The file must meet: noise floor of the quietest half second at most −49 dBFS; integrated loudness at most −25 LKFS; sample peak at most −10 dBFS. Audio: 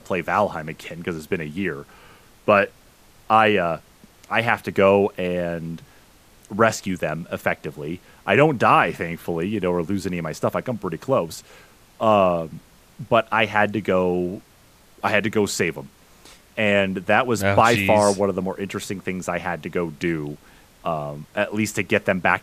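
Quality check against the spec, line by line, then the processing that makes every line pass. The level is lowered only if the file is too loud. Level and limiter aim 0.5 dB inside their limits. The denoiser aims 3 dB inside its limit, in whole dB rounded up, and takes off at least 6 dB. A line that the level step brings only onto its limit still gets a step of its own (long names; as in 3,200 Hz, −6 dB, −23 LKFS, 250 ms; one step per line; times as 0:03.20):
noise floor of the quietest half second −53 dBFS: in spec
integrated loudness −21.5 LKFS: out of spec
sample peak −2.0 dBFS: out of spec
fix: level −4 dB
brickwall limiter −10.5 dBFS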